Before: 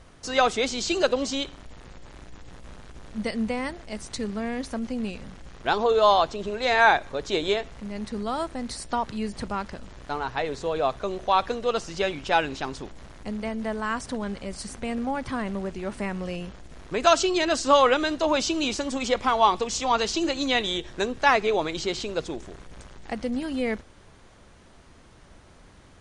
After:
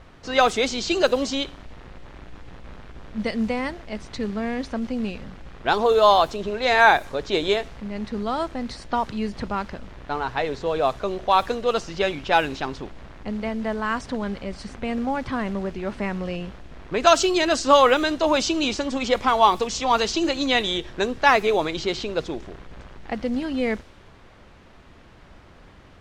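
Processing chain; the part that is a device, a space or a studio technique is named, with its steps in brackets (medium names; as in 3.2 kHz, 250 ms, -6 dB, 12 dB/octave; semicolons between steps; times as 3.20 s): cassette deck with a dynamic noise filter (white noise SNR 28 dB; level-controlled noise filter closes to 2.7 kHz, open at -16.5 dBFS); trim +3 dB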